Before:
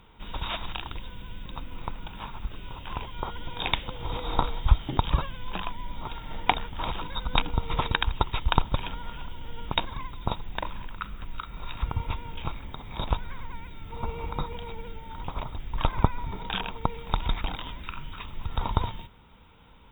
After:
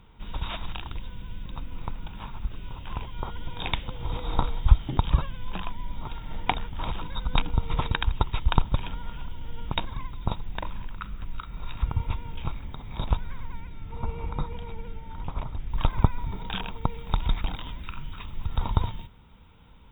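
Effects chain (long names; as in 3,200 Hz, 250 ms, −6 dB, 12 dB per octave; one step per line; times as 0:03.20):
bass and treble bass +6 dB, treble −2 dB, from 0:13.61 treble −9 dB, from 0:15.69 treble +2 dB
level −3 dB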